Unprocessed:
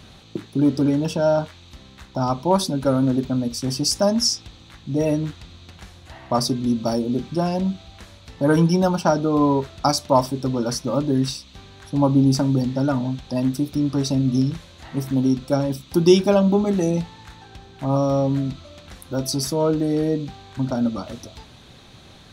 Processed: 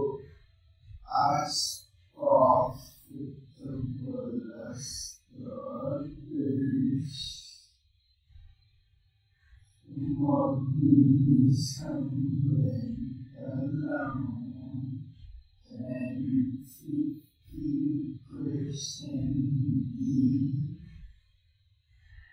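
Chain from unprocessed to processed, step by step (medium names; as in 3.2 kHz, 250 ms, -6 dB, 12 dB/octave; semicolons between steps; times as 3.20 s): expander on every frequency bin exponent 2; Paulstretch 4.2×, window 0.05 s, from 9.57 s; trim -4 dB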